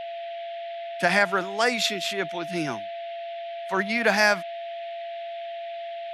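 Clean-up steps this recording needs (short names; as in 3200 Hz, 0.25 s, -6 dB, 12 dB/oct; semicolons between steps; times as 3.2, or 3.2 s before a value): notch 680 Hz, Q 30; noise print and reduce 30 dB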